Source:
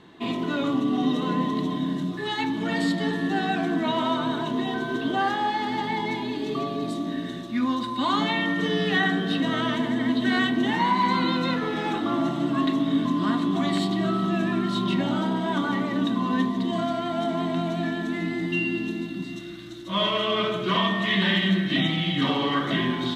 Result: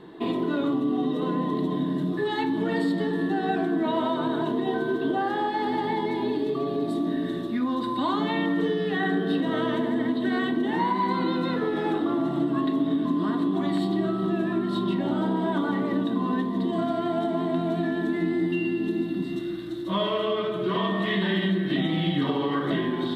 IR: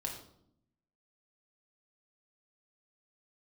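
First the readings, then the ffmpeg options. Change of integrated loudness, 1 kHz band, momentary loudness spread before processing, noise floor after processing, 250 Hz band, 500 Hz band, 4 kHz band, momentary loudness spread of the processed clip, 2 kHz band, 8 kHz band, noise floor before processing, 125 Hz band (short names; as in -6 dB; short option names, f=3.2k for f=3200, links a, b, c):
-1.0 dB, -2.5 dB, 6 LU, -30 dBFS, 0.0 dB, +2.5 dB, -7.0 dB, 2 LU, -5.0 dB, n/a, -33 dBFS, -1.5 dB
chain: -filter_complex "[0:a]equalizer=f=100:t=o:w=0.67:g=-5,equalizer=f=400:t=o:w=0.67:g=10,equalizer=f=2.5k:t=o:w=0.67:g=-6,equalizer=f=6.3k:t=o:w=0.67:g=-12,acompressor=threshold=-24dB:ratio=6,asplit=2[a][b];[1:a]atrim=start_sample=2205[c];[b][c]afir=irnorm=-1:irlink=0,volume=-8dB[d];[a][d]amix=inputs=2:normalize=0"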